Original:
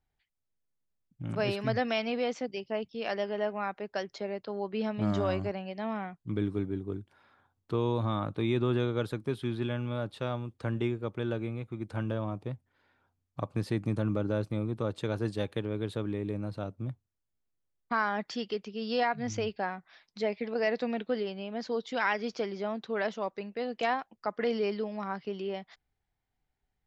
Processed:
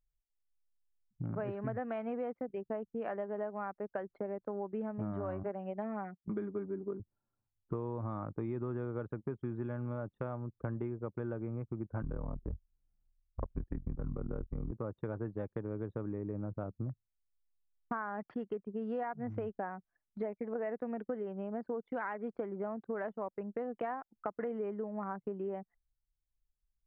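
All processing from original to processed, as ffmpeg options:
-filter_complex "[0:a]asettb=1/sr,asplit=3[a][b][c];[a]atrim=end=5.434[d];[b]atrim=start=5.43:end=7,asetpts=PTS-STARTPTS,afade=t=in:d=0.004:c=qsin,afade=t=out:st=1.566:d=0.004:c=qsin,highpass=f=270:p=1,highshelf=f=5.7k:g=10.5,aecho=1:1:5:0.83,atrim=end_sample=69237[e];[c]atrim=start=6.996[f];[d][e]acrossfade=d=0.004:c1=hsin:c2=qsin[g];[g][f]acrossfade=d=0.004:c1=qsin:c2=hsin,asettb=1/sr,asplit=3[h][i][j];[h]atrim=end=12.024[k];[i]atrim=start=12.02:end=14.72,asetpts=PTS-STARTPTS,afade=t=in:d=0.004:c=qsin,afade=t=out:st=2.696:d=0.004:c=qsin,lowshelf=f=230:g=10,afreqshift=-66,tremolo=f=41:d=0.857[l];[j]atrim=start=14.716[m];[k][l]acrossfade=d=0.004:c1=hsin:c2=qsin[n];[n][m]acrossfade=d=0.004:c1=qsin:c2=hsin,anlmdn=0.251,lowpass=f=1.6k:w=0.5412,lowpass=f=1.6k:w=1.3066,acompressor=threshold=-39dB:ratio=6,volume=4dB"

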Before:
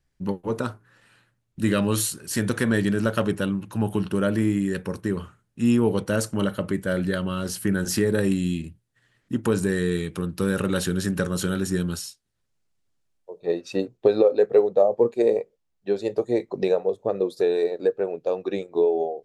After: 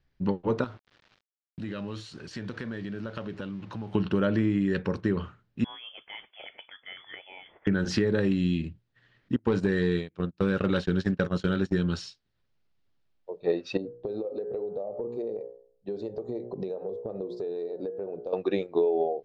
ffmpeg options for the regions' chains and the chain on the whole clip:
-filter_complex "[0:a]asettb=1/sr,asplit=3[a][b][c];[a]atrim=end=0.644[d];[b]atrim=start=0.64:end=3.95,asetpts=PTS-STARTPTS,afade=t=in:d=0.004:c=qsin,afade=t=out:st=3.306:d=0.004:c=qsin,acompressor=threshold=-36dB:ratio=4:attack=3.2:release=140:knee=1:detection=peak,aeval=exprs='val(0)*gte(abs(val(0)),0.00266)':c=same[e];[c]atrim=start=3.946[f];[d][e]acrossfade=d=0.004:c1=hsin:c2=qsin[g];[g][f]acrossfade=d=0.004:c1=qsin:c2=hsin,asettb=1/sr,asplit=3[h][i][j];[h]atrim=end=5.644[k];[i]atrim=start=5.64:end=7.67,asetpts=PTS-STARTPTS,afade=t=in:d=0.004:c=qsin,afade=t=out:st=2.026:d=0.004:c=qsin,highpass=130,aderivative,lowpass=f=3.1k:t=q:w=0.5098,lowpass=f=3.1k:t=q:w=0.6013,lowpass=f=3.1k:t=q:w=0.9,lowpass=f=3.1k:t=q:w=2.563,afreqshift=-3600[l];[j]atrim=start=7.666[m];[k][l]acrossfade=d=0.004:c1=hsin:c2=qsin[n];[n][m]acrossfade=d=0.004:c1=qsin:c2=hsin,asettb=1/sr,asplit=3[o][p][q];[o]atrim=end=9.364[r];[p]atrim=start=9.36:end=11.74,asetpts=PTS-STARTPTS,afade=t=in:d=0.004:c=qsin,afade=t=out:st=2.376:d=0.004:c=qsin,agate=range=-36dB:threshold=-27dB:ratio=16:release=100:detection=peak,asoftclip=type=hard:threshold=-14.5dB,acompressor=mode=upward:threshold=-36dB:ratio=2.5:attack=3.2:release=140:knee=2.83:detection=peak[s];[q]atrim=start=11.736[t];[r][s]acrossfade=d=0.004:c1=hsin:c2=qsin[u];[u][t]acrossfade=d=0.004:c1=qsin:c2=hsin,asettb=1/sr,asplit=3[v][w][x];[v]atrim=end=13.774[y];[w]atrim=start=13.77:end=18.33,asetpts=PTS-STARTPTS,afade=t=in:d=0.004:c=qsin,afade=t=out:st=4.556:d=0.004:c=qsin,bandreject=f=59.87:t=h:w=4,bandreject=f=119.74:t=h:w=4,bandreject=f=179.61:t=h:w=4,bandreject=f=239.48:t=h:w=4,bandreject=f=299.35:t=h:w=4,bandreject=f=359.22:t=h:w=4,bandreject=f=419.09:t=h:w=4,bandreject=f=478.96:t=h:w=4,bandreject=f=538.83:t=h:w=4,bandreject=f=598.7:t=h:w=4,bandreject=f=658.57:t=h:w=4,bandreject=f=718.44:t=h:w=4,bandreject=f=778.31:t=h:w=4,bandreject=f=838.18:t=h:w=4,bandreject=f=898.05:t=h:w=4,bandreject=f=957.92:t=h:w=4,bandreject=f=1.01779k:t=h:w=4,bandreject=f=1.07766k:t=h:w=4,bandreject=f=1.13753k:t=h:w=4,bandreject=f=1.1974k:t=h:w=4,bandreject=f=1.25727k:t=h:w=4,bandreject=f=1.31714k:t=h:w=4,bandreject=f=1.37701k:t=h:w=4,bandreject=f=1.43688k:t=h:w=4,bandreject=f=1.49675k:t=h:w=4,bandreject=f=1.55662k:t=h:w=4,bandreject=f=1.61649k:t=h:w=4,bandreject=f=1.67636k:t=h:w=4,bandreject=f=1.73623k:t=h:w=4,bandreject=f=1.7961k:t=h:w=4,acompressor=threshold=-29dB:ratio=6:attack=3.2:release=140:knee=1:detection=peak,equalizer=f=2.2k:w=0.53:g=-15[z];[x]atrim=start=18.326[aa];[y][z]acrossfade=d=0.004:c1=hsin:c2=qsin[ab];[ab][aa]acrossfade=d=0.004:c1=qsin:c2=hsin,lowpass=f=4.7k:w=0.5412,lowpass=f=4.7k:w=1.3066,acompressor=threshold=-22dB:ratio=6,volume=1.5dB"

